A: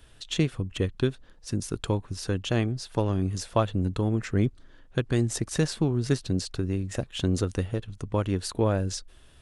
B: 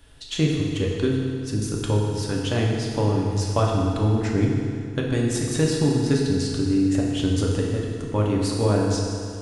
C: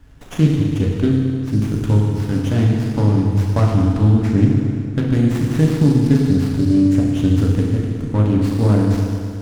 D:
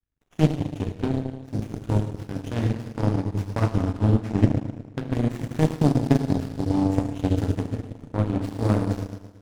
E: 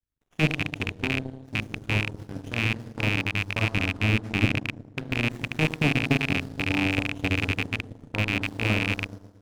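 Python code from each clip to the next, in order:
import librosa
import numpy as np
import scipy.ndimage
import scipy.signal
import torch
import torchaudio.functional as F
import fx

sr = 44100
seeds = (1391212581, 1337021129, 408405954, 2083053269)

y1 = fx.rev_fdn(x, sr, rt60_s=2.3, lf_ratio=0.95, hf_ratio=0.85, size_ms=21.0, drr_db=-2.5)
y2 = fx.low_shelf_res(y1, sr, hz=320.0, db=6.5, q=1.5)
y2 = fx.running_max(y2, sr, window=9)
y2 = y2 * 10.0 ** (1.0 / 20.0)
y3 = fx.power_curve(y2, sr, exponent=2.0)
y4 = fx.rattle_buzz(y3, sr, strikes_db=-26.0, level_db=-8.0)
y4 = y4 * 10.0 ** (-5.0 / 20.0)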